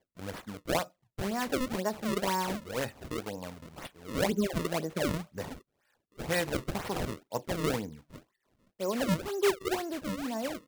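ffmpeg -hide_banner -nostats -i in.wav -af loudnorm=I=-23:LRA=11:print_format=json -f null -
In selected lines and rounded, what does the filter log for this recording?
"input_i" : "-33.1",
"input_tp" : "-15.1",
"input_lra" : "1.6",
"input_thresh" : "-43.7",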